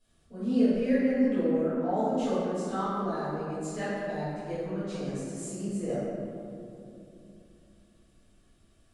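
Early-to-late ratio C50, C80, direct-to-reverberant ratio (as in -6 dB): -4.0 dB, -1.5 dB, -15.0 dB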